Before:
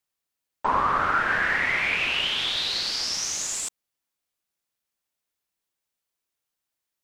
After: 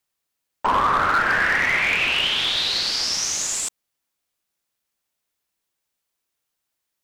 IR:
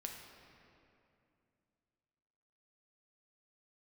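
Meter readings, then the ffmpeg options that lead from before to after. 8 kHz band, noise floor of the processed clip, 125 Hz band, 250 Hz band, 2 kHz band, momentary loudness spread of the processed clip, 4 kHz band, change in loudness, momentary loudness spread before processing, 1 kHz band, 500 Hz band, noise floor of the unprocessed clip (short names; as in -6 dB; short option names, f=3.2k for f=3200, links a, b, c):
+4.5 dB, -80 dBFS, +4.0 dB, +4.0 dB, +4.0 dB, 5 LU, +4.5 dB, +4.0 dB, 6 LU, +4.0 dB, +4.0 dB, -85 dBFS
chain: -af "asoftclip=type=hard:threshold=-18dB,volume=4.5dB"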